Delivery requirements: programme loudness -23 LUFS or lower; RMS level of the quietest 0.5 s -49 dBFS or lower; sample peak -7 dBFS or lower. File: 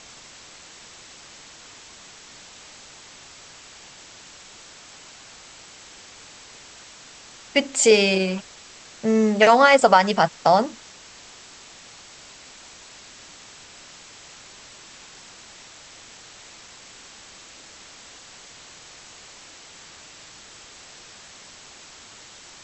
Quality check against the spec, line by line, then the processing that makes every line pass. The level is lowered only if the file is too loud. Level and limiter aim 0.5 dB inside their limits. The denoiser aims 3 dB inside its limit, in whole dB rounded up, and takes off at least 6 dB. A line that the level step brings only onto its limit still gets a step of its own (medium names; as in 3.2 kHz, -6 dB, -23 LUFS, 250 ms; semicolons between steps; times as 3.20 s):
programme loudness -18.0 LUFS: fail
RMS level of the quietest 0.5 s -46 dBFS: fail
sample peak -3.5 dBFS: fail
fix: trim -5.5 dB